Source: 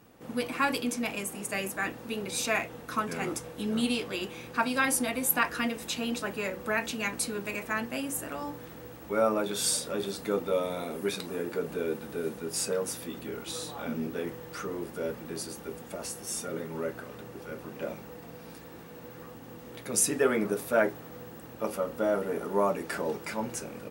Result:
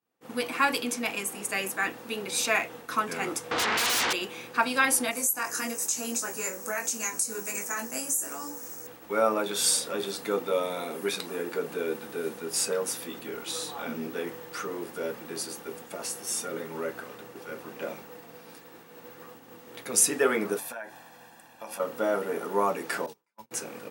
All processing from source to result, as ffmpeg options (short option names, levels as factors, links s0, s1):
-filter_complex "[0:a]asettb=1/sr,asplit=3[s0][s1][s2];[s0]atrim=end=3.514[s3];[s1]atrim=start=3.51:end=4.13,asetpts=PTS-STARTPTS,afade=t=in:d=0.004:c=qsin,afade=t=out:st=0.616:d=0.004:c=qsin,lowpass=f=4600:w=0.5412,lowpass=f=4600:w=1.3066,acompressor=threshold=0.0251:ratio=10:attack=3.2:release=140:knee=1:detection=peak,aeval=exprs='0.0501*sin(PI/2*8.91*val(0)/0.0501)':c=same[s4];[s2]atrim=start=4.126[s5];[s3][s4]acrossfade=d=0.004:c1=hsin:c2=qsin[s6];[s6][s5]acrossfade=d=0.004:c1=qsin:c2=hsin,asettb=1/sr,asplit=3[s7][s8][s9];[s7]atrim=end=5.114[s10];[s8]atrim=start=5.11:end=8.87,asetpts=PTS-STARTPTS,afade=t=in:d=0.004:c=qsin,afade=t=out:st=3.756:d=0.004:c=qsin,highshelf=f=4800:t=q:w=3:g=11.5,acompressor=threshold=0.0631:ratio=6:attack=3.2:release=140:knee=1:detection=peak,flanger=delay=20:depth=3.1:speed=1.2[s11];[s9]atrim=start=8.866[s12];[s10][s11]acrossfade=d=0.004:c1=hsin:c2=qsin[s13];[s13][s12]acrossfade=d=0.004:c1=qsin:c2=hsin,asettb=1/sr,asplit=3[s14][s15][s16];[s14]atrim=end=20.584[s17];[s15]atrim=start=20.58:end=21.8,asetpts=PTS-STARTPTS,afade=t=in:d=0.004:c=qsin,afade=t=out:st=1.216:d=0.004:c=qsin,lowshelf=f=260:g=-10.5,aecho=1:1:1.2:0.7,atrim=end_sample=53802,acompressor=threshold=0.0141:ratio=8:attack=3.2:release=140:knee=1:detection=peak[s18];[s16]atrim=start=21.796[s19];[s17][s18]acrossfade=d=0.004:c1=hsin:c2=qsin[s20];[s20][s19]acrossfade=d=0.004:c1=qsin:c2=hsin,asettb=1/sr,asplit=3[s21][s22][s23];[s21]atrim=end=23.064[s24];[s22]atrim=start=23.06:end=23.51,asetpts=PTS-STARTPTS,afade=t=in:d=0.004:c=qsin,afade=t=out:st=0.446:d=0.004:c=qsin,agate=range=0.0501:threshold=0.0282:ratio=16:release=100:detection=peak,equalizer=f=970:w=5.6:g=9,acrossover=split=140|3000[s25][s26][s27];[s26]acompressor=threshold=0.00562:ratio=6:attack=3.2:release=140:knee=2.83:detection=peak[s28];[s25][s28][s27]amix=inputs=3:normalize=0[s29];[s23]atrim=start=23.506[s30];[s24][s29]acrossfade=d=0.004:c1=hsin:c2=qsin[s31];[s31][s30]acrossfade=d=0.004:c1=qsin:c2=hsin,highpass=f=430:p=1,agate=range=0.0224:threshold=0.00562:ratio=3:detection=peak,bandreject=f=600:w=12,volume=1.58"